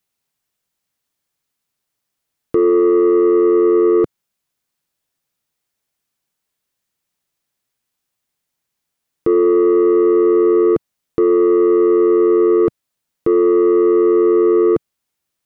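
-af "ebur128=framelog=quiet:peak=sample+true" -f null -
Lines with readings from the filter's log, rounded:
Integrated loudness:
  I:         -13.7 LUFS
  Threshold: -23.8 LUFS
Loudness range:
  LRA:         7.5 LU
  Threshold: -35.8 LUFS
  LRA low:   -21.1 LUFS
  LRA high:  -13.5 LUFS
Sample peak:
  Peak:       -8.1 dBFS
True peak:
  Peak:       -8.1 dBFS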